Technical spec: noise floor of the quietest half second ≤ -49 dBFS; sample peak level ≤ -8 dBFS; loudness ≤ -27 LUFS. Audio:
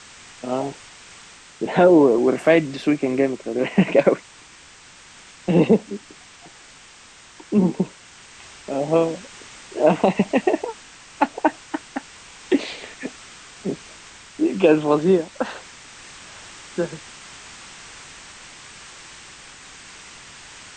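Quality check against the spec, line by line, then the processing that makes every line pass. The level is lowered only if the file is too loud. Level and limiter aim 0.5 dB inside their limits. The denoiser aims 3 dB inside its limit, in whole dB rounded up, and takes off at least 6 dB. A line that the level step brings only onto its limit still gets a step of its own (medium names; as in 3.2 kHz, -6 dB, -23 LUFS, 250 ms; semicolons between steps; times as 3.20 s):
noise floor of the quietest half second -47 dBFS: fail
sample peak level -3.5 dBFS: fail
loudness -20.5 LUFS: fail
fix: trim -7 dB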